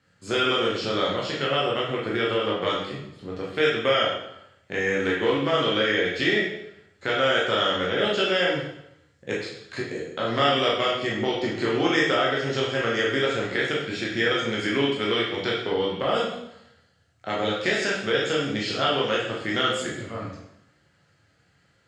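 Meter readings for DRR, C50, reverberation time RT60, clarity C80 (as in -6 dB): -5.5 dB, 2.0 dB, 0.80 s, 5.5 dB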